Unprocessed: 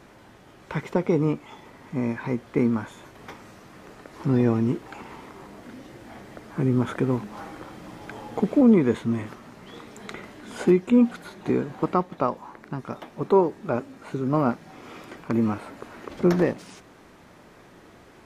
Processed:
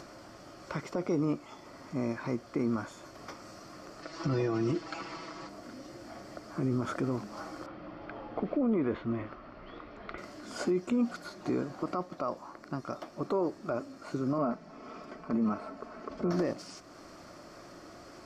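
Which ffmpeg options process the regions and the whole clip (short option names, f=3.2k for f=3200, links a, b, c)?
-filter_complex "[0:a]asettb=1/sr,asplit=3[a][b][c];[a]atrim=end=4.024[d];[b]atrim=start=4.02:end=5.49,asetpts=PTS-STARTPTS,afade=t=in:d=0.004:c=qsin,afade=t=out:st=1.466:d=0.004:c=qsin,lowpass=4.1k,highshelf=f=2.2k:g=11.5,aecho=1:1:6.1:0.75,atrim=end_sample=64827[e];[c]atrim=start=5.486[f];[d][e]acrossfade=d=0.004:c1=hsin:c2=qsin[g];[g][f]acrossfade=d=0.004:c1=qsin:c2=hsin,asettb=1/sr,asplit=3[h][i][j];[h]atrim=end=7.664[k];[i]atrim=start=7.66:end=10.18,asetpts=PTS-STARTPTS,afade=t=in:d=0.004:c=qsin,afade=t=out:st=2.516:d=0.004:c=qsin,lowpass=f=3.2k:w=0.5412,lowpass=f=3.2k:w=1.3066,asubboost=boost=10:cutoff=57[l];[j]atrim=start=10.176[m];[k][l]acrossfade=d=0.004:c1=hsin:c2=qsin[n];[n][m]acrossfade=d=0.004:c1=qsin:c2=hsin,asettb=1/sr,asplit=3[o][p][q];[o]atrim=end=14.384[r];[p]atrim=start=14.38:end=16.32,asetpts=PTS-STARTPTS,afade=t=in:d=0.004:c=qsin,afade=t=out:st=1.936:d=0.004:c=qsin,lowpass=f=1.7k:p=1,aecho=1:1:4.6:0.62,atrim=end_sample=85554[s];[q]atrim=start=16.316[t];[r][s]acrossfade=d=0.004:c1=hsin:c2=qsin[u];[u][t]acrossfade=d=0.004:c1=qsin:c2=hsin,superequalizer=6b=1.78:8b=2.24:10b=2:14b=3.55:15b=2,acompressor=mode=upward:threshold=-36dB:ratio=2.5,alimiter=limit=-14.5dB:level=0:latency=1:release=29,volume=-7dB"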